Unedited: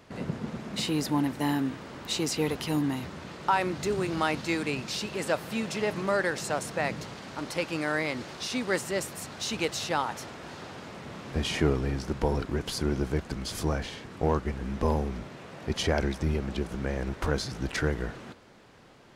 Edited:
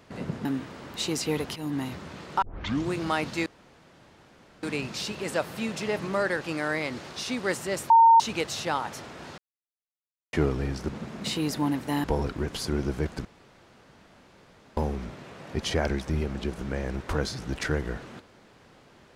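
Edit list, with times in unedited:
0.45–1.56 s: move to 12.17 s
2.67–2.93 s: fade in, from -12.5 dB
3.53 s: tape start 0.50 s
4.57 s: insert room tone 1.17 s
6.35–7.65 s: delete
9.14–9.44 s: bleep 914 Hz -12 dBFS
10.62–11.57 s: mute
13.38–14.90 s: room tone

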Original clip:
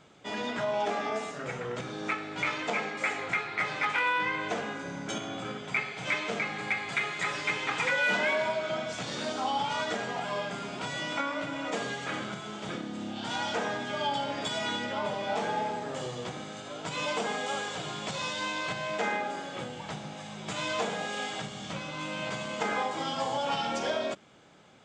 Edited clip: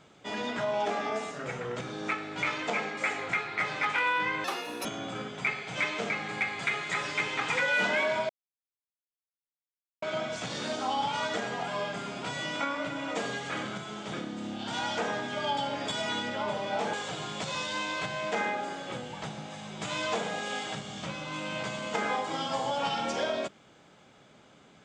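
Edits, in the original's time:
4.44–5.15 s: speed 172%
8.59 s: insert silence 1.73 s
15.50–17.60 s: delete

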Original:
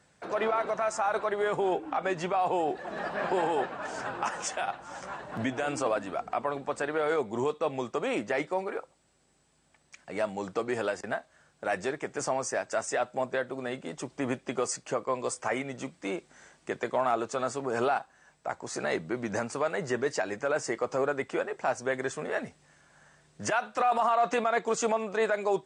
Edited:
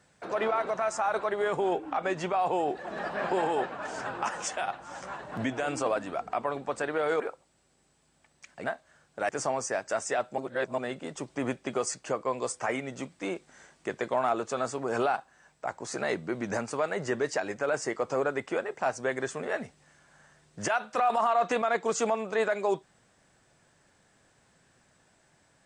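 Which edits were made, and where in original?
7.20–8.70 s: delete
10.14–11.09 s: delete
11.74–12.11 s: delete
13.20–13.60 s: reverse

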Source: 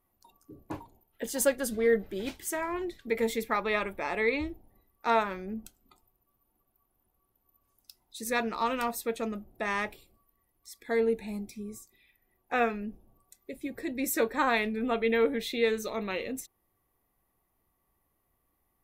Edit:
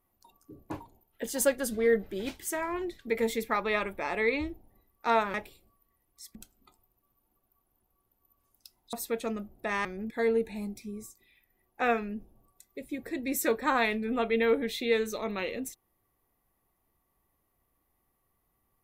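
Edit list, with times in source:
5.34–5.59 s: swap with 9.81–10.82 s
8.17–8.89 s: delete

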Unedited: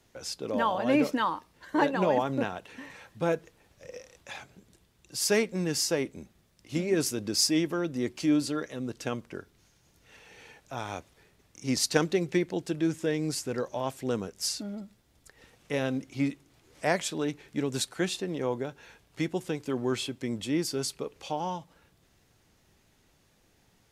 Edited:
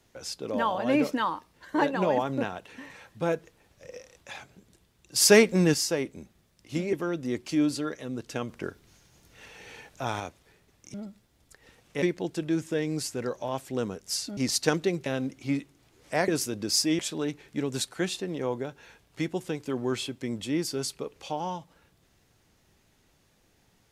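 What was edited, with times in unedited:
5.16–5.74 s: gain +8 dB
6.93–7.64 s: move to 16.99 s
9.20–10.91 s: gain +5 dB
11.65–12.34 s: swap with 14.69–15.77 s

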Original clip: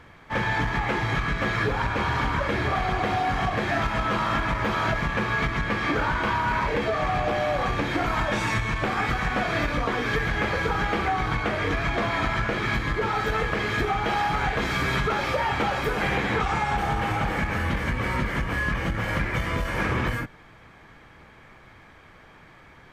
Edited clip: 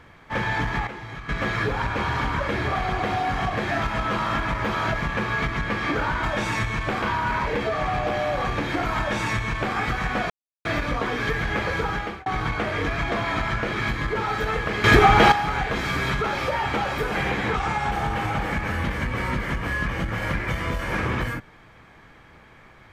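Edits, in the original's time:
0.87–1.29 s: gain -11 dB
8.18–8.97 s: copy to 6.23 s
9.51 s: insert silence 0.35 s
10.61–11.12 s: fade out equal-power
13.70–14.18 s: gain +11 dB

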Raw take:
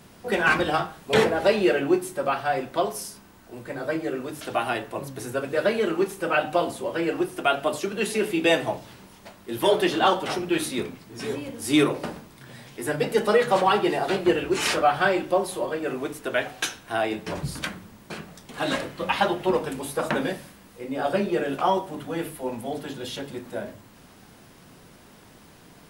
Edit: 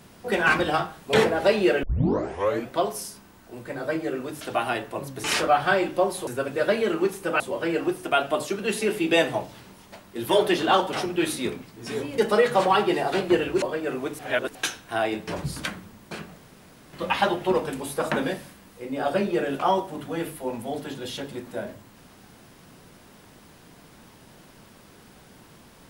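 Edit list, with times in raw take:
1.83 s: tape start 0.87 s
6.37–6.73 s: delete
11.51–13.14 s: delete
14.58–15.61 s: move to 5.24 s
16.18–16.54 s: reverse
18.37–18.92 s: room tone

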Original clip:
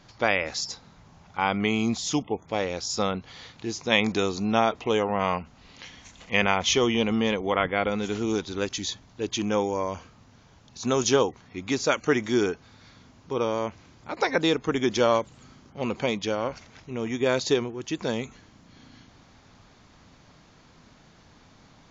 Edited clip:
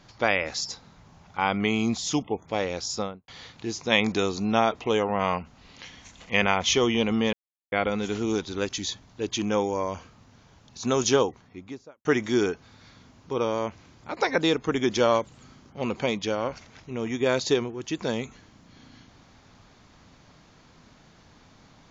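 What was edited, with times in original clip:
2.86–3.28 s: studio fade out
7.33–7.72 s: mute
11.13–12.05 s: studio fade out

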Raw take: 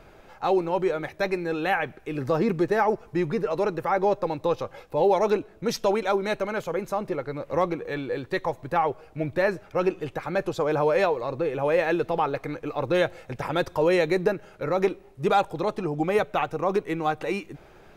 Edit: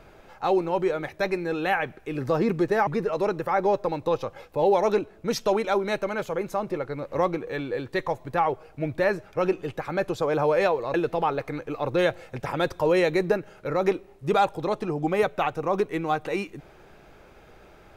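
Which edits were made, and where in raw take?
2.87–3.25 s: delete
11.32–11.90 s: delete

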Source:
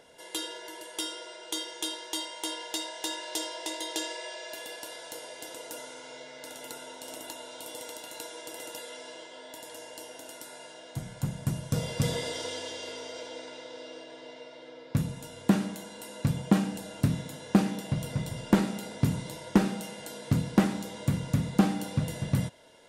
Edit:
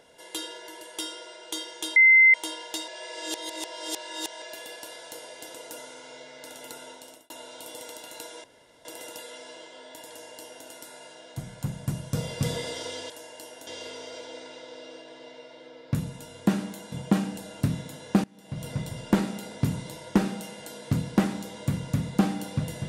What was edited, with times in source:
1.96–2.34 s: bleep 2.07 kHz -12 dBFS
2.88–4.42 s: reverse
6.90–7.30 s: fade out
8.44 s: insert room tone 0.41 s
9.68–10.25 s: copy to 12.69 s
15.94–16.32 s: delete
17.64–18.07 s: fade in quadratic, from -24 dB

